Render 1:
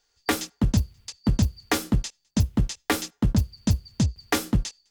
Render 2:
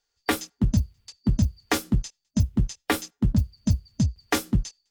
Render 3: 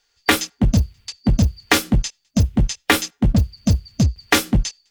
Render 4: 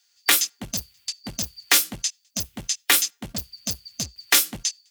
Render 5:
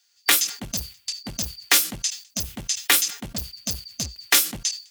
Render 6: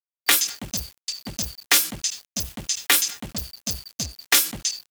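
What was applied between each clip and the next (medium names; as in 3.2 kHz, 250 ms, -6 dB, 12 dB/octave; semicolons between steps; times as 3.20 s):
spectral noise reduction 8 dB
peaking EQ 2.5 kHz +6.5 dB 1.9 oct; in parallel at -5 dB: wavefolder -22 dBFS; on the sum: trim +5 dB
tilt EQ +4.5 dB/octave; trim -8 dB
decay stretcher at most 150 dB/s
de-hum 328 Hz, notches 8; small samples zeroed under -39.5 dBFS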